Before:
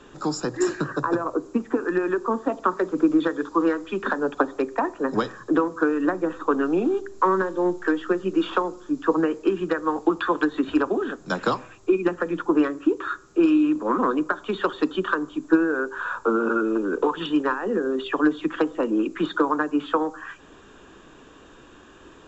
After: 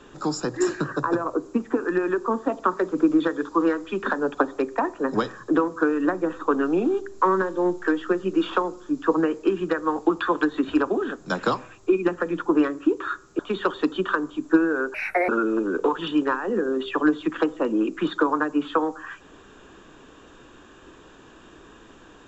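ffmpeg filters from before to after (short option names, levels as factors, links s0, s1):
-filter_complex "[0:a]asplit=4[s0][s1][s2][s3];[s0]atrim=end=13.392[s4];[s1]atrim=start=14.378:end=15.934[s5];[s2]atrim=start=15.93:end=16.47,asetpts=PTS-STARTPTS,asetrate=68796,aresample=44100,atrim=end_sample=15265,asetpts=PTS-STARTPTS[s6];[s3]atrim=start=16.466[s7];[s4][s5]acrossfade=d=0.004:c1=hsin:c2=hsin[s8];[s8][s6]acrossfade=d=0.004:c1=hsin:c2=hsin[s9];[s9][s7]acrossfade=d=0.004:c1=hsin:c2=hsin"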